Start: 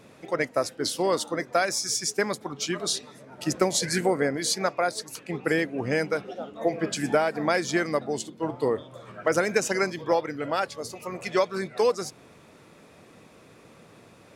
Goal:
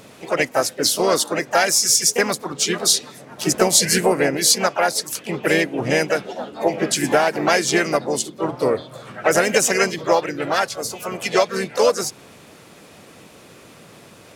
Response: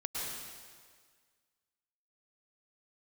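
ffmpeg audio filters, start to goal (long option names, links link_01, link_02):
-filter_complex "[0:a]acontrast=25,asplit=3[link_01][link_02][link_03];[link_02]asetrate=52444,aresample=44100,atempo=0.840896,volume=-6dB[link_04];[link_03]asetrate=58866,aresample=44100,atempo=0.749154,volume=-12dB[link_05];[link_01][link_04][link_05]amix=inputs=3:normalize=0,highshelf=frequency=3100:gain=7"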